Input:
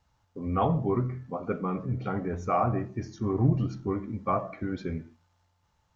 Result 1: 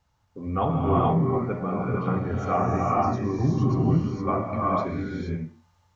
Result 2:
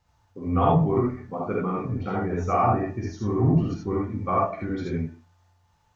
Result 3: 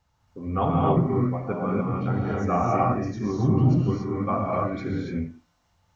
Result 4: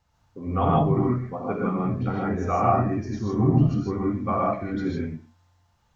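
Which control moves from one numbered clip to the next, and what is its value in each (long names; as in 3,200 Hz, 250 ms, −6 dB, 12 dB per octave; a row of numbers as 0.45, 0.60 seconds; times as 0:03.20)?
reverb whose tail is shaped and stops, gate: 490, 100, 310, 180 milliseconds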